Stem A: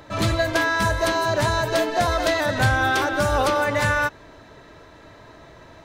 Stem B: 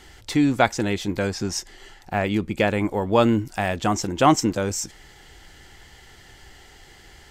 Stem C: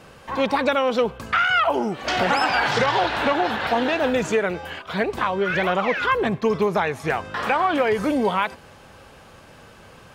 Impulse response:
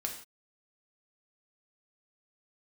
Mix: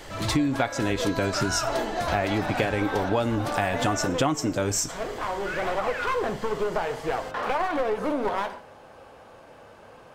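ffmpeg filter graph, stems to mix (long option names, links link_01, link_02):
-filter_complex "[0:a]volume=-8dB[link_01];[1:a]aecho=1:1:7.1:0.42,volume=1.5dB,asplit=3[link_02][link_03][link_04];[link_03]volume=-11.5dB[link_05];[2:a]equalizer=frequency=640:width_type=o:width=2.2:gain=11.5,aeval=exprs='clip(val(0),-1,0.141)':channel_layout=same,flanger=delay=5.6:depth=6.9:regen=-71:speed=1.7:shape=sinusoidal,volume=-9dB,asplit=2[link_06][link_07];[link_07]volume=-4dB[link_08];[link_04]apad=whole_len=447576[link_09];[link_06][link_09]sidechaincompress=threshold=-31dB:ratio=8:attack=16:release=1020[link_10];[3:a]atrim=start_sample=2205[link_11];[link_05][link_08]amix=inputs=2:normalize=0[link_12];[link_12][link_11]afir=irnorm=-1:irlink=0[link_13];[link_01][link_02][link_10][link_13]amix=inputs=4:normalize=0,acompressor=threshold=-21dB:ratio=8"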